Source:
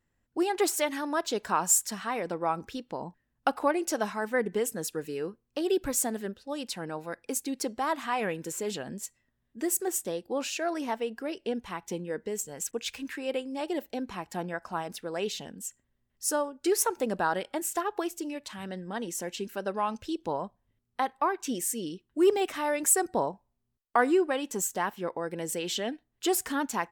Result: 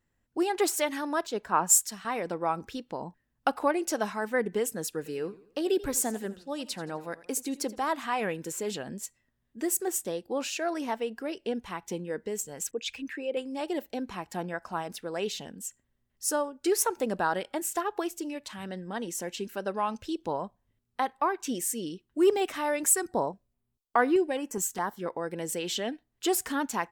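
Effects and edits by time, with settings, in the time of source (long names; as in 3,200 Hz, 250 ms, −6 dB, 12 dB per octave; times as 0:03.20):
0:01.27–0:02.05: multiband upward and downward expander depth 70%
0:04.97–0:07.89: feedback echo with a swinging delay time 84 ms, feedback 41%, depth 132 cents, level −18 dB
0:12.71–0:13.37: spectral envelope exaggerated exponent 1.5
0:22.91–0:25.06: notch on a step sequencer 4.8 Hz 610–7,600 Hz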